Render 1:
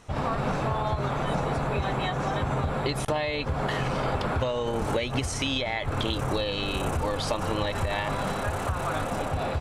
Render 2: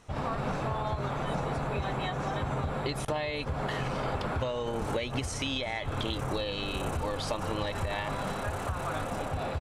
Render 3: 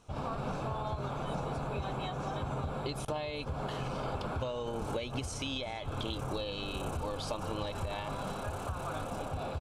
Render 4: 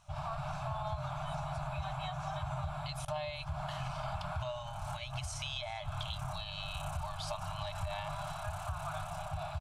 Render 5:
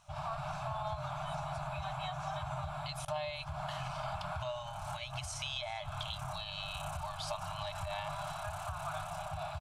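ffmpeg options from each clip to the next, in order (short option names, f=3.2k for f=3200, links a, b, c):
-af "aecho=1:1:393:0.0891,volume=-4.5dB"
-af "equalizer=f=1.9k:w=5.8:g=-14.5,volume=-4dB"
-af "afftfilt=real='re*(1-between(b*sr/4096,180,590))':imag='im*(1-between(b*sr/4096,180,590))':win_size=4096:overlap=0.75,volume=-1dB"
-af "lowshelf=f=140:g=-7,volume=1dB"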